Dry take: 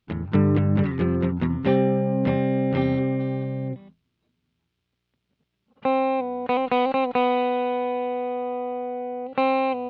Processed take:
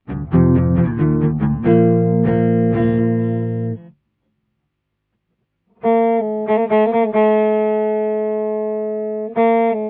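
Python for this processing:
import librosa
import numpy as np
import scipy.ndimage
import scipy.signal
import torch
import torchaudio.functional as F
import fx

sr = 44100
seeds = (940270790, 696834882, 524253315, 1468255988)

y = fx.pitch_bins(x, sr, semitones=-2.5)
y = fx.lowpass(y, sr, hz=1400.0, slope=6)
y = fx.peak_eq(y, sr, hz=80.0, db=-9.5, octaves=0.3)
y = y * librosa.db_to_amplitude(8.5)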